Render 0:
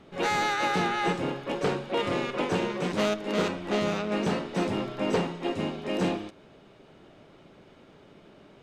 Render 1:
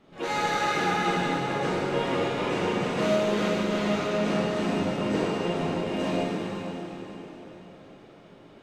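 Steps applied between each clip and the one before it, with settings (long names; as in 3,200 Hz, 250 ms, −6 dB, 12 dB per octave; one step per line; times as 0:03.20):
dense smooth reverb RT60 4.3 s, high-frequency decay 0.85×, DRR −8.5 dB
level −7.5 dB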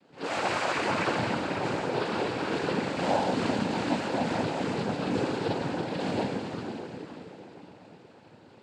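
cochlear-implant simulation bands 8
level −2 dB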